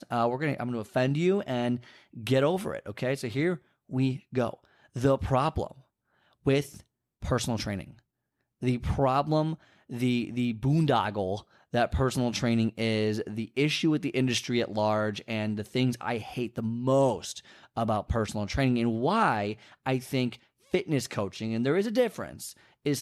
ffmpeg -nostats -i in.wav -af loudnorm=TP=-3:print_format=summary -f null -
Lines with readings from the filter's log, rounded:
Input Integrated:    -28.9 LUFS
Input True Peak:     -12.1 dBTP
Input LRA:             2.7 LU
Input Threshold:     -39.3 LUFS